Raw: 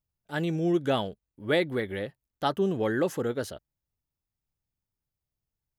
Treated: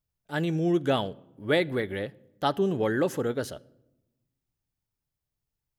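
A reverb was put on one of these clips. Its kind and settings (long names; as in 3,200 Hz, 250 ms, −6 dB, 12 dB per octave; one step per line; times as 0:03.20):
rectangular room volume 3,800 cubic metres, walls furnished, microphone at 0.34 metres
level +1 dB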